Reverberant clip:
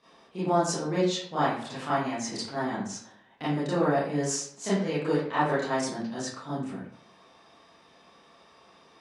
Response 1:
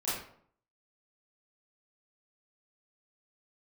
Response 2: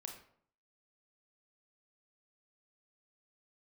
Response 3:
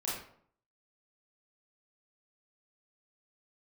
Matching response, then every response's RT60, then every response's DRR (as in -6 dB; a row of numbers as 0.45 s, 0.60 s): 1; 0.60 s, 0.60 s, 0.60 s; -11.5 dB, 2.5 dB, -7.5 dB